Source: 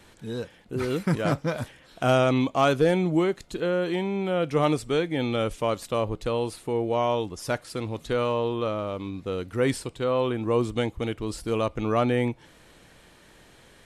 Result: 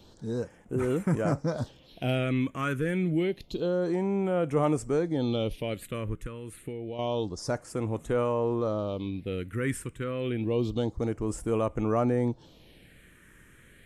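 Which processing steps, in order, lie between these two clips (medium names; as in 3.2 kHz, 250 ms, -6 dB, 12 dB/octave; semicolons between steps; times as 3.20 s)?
in parallel at +1 dB: peak limiter -21.5 dBFS, peak gain reduction 10 dB; 6.13–6.99 s: on the sum: compression 6:1, threshold -25 dBFS, peak gain reduction 8 dB; phase shifter stages 4, 0.28 Hz, lowest notch 730–4300 Hz; trim -6.5 dB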